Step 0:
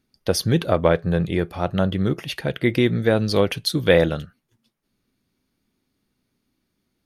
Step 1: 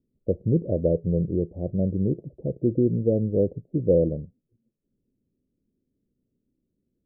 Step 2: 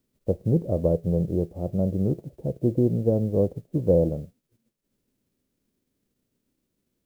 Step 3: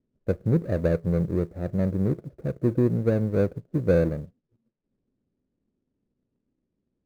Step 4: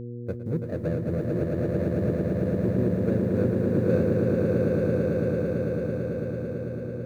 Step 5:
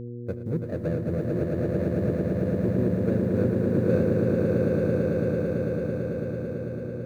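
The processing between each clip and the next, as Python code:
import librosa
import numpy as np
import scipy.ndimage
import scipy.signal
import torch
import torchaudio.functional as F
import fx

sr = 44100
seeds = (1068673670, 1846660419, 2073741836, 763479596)

y1 = scipy.signal.sosfilt(scipy.signal.butter(8, 560.0, 'lowpass', fs=sr, output='sos'), x)
y1 = y1 * 10.0 ** (-2.5 / 20.0)
y2 = fx.envelope_flatten(y1, sr, power=0.6)
y3 = scipy.ndimage.median_filter(y2, 41, mode='constant')
y4 = fx.echo_swell(y3, sr, ms=111, loudest=8, wet_db=-4.0)
y4 = fx.dmg_buzz(y4, sr, base_hz=120.0, harmonics=4, level_db=-29.0, tilt_db=-4, odd_only=False)
y4 = y4 * 10.0 ** (-7.0 / 20.0)
y5 = y4 + 10.0 ** (-17.0 / 20.0) * np.pad(y4, (int(78 * sr / 1000.0), 0))[:len(y4)]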